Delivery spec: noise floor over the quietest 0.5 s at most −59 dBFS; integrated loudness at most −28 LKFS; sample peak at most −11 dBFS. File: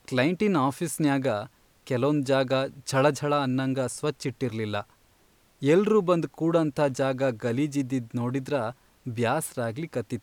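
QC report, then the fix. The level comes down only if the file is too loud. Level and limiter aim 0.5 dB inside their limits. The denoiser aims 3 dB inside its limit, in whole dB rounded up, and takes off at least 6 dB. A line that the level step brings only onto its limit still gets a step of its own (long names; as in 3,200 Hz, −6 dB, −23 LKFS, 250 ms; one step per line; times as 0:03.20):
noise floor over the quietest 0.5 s −62 dBFS: in spec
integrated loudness −26.5 LKFS: out of spec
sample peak −9.0 dBFS: out of spec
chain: level −2 dB
brickwall limiter −11.5 dBFS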